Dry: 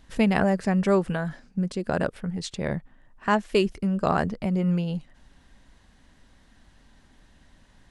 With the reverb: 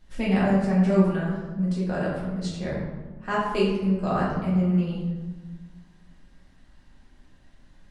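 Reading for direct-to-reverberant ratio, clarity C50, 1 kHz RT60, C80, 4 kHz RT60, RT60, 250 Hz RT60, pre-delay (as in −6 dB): −7.5 dB, 1.0 dB, 1.3 s, 3.5 dB, 0.75 s, 1.4 s, 1.9 s, 5 ms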